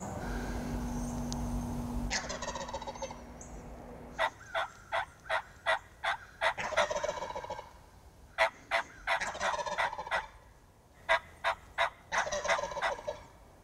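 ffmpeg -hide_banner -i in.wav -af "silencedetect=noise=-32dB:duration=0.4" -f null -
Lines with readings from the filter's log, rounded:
silence_start: 3.06
silence_end: 4.19 | silence_duration: 1.14
silence_start: 7.59
silence_end: 8.38 | silence_duration: 0.79
silence_start: 10.20
silence_end: 11.09 | silence_duration: 0.89
silence_start: 13.11
silence_end: 13.64 | silence_duration: 0.52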